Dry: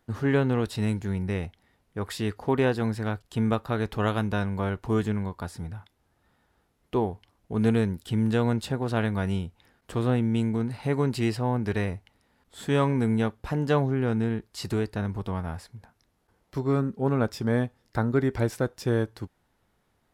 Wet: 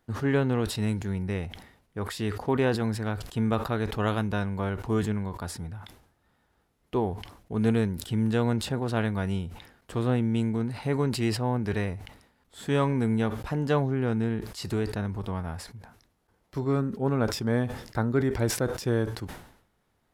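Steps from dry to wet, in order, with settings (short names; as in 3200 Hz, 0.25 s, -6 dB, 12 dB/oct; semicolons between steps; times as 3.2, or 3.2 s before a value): sustainer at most 85 dB/s; gain -1.5 dB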